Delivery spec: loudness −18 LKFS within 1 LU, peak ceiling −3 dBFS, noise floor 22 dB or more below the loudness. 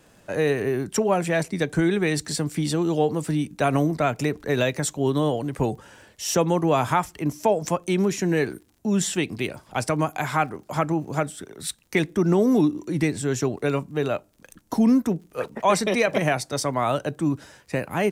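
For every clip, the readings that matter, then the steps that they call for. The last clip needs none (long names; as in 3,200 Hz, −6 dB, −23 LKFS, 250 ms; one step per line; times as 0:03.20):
crackle rate 51 per second; integrated loudness −24.0 LKFS; sample peak −8.0 dBFS; target loudness −18.0 LKFS
→ click removal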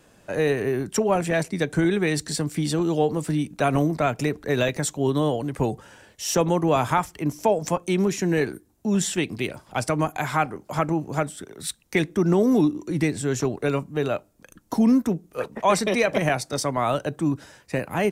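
crackle rate 0.77 per second; integrated loudness −24.0 LKFS; sample peak −8.0 dBFS; target loudness −18.0 LKFS
→ level +6 dB
brickwall limiter −3 dBFS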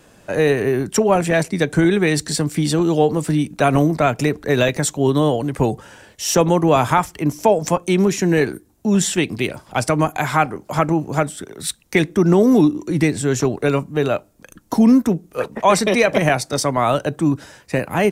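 integrated loudness −18.0 LKFS; sample peak −3.0 dBFS; background noise floor −52 dBFS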